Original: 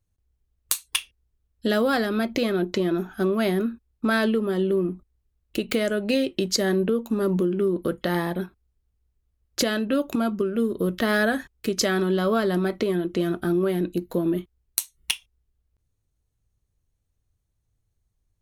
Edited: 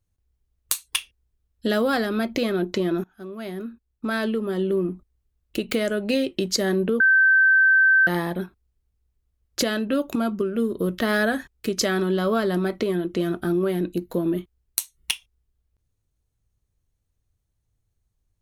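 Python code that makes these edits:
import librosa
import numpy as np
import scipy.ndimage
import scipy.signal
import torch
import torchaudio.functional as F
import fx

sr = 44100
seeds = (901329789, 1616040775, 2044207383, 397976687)

y = fx.edit(x, sr, fx.fade_in_from(start_s=3.04, length_s=1.76, floor_db=-21.5),
    fx.bleep(start_s=7.0, length_s=1.07, hz=1550.0, db=-13.0), tone=tone)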